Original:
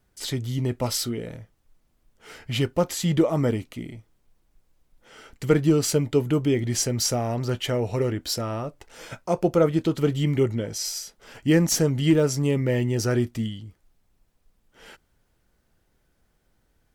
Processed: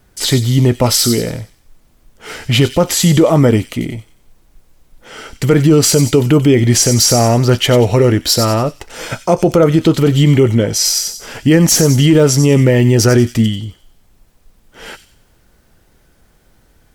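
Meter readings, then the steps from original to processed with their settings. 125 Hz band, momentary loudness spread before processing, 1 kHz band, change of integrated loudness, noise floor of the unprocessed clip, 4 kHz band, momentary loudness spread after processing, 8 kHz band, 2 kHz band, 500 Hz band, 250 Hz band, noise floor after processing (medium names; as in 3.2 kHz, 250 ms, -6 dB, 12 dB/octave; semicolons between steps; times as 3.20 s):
+13.5 dB, 13 LU, +13.0 dB, +12.5 dB, -69 dBFS, +14.5 dB, 13 LU, +14.5 dB, +12.5 dB, +11.5 dB, +12.0 dB, -53 dBFS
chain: on a send: feedback echo behind a high-pass 92 ms, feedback 37%, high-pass 4.1 kHz, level -6 dB; on the sum: loudness maximiser +16.5 dB; trim -1 dB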